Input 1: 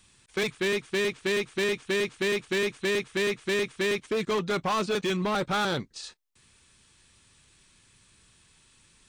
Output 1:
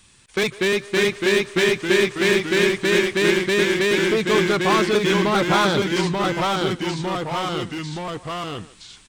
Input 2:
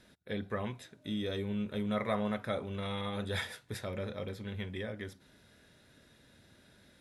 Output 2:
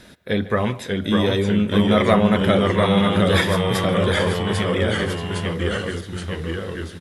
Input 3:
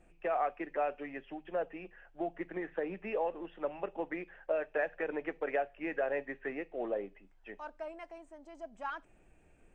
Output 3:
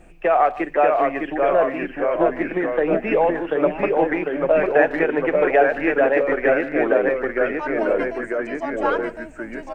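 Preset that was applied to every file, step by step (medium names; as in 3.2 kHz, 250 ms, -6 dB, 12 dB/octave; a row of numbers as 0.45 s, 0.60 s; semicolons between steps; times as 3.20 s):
ever faster or slower copies 573 ms, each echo -1 st, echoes 3; speakerphone echo 150 ms, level -17 dB; normalise loudness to -20 LUFS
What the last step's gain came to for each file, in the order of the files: +6.5 dB, +15.5 dB, +15.0 dB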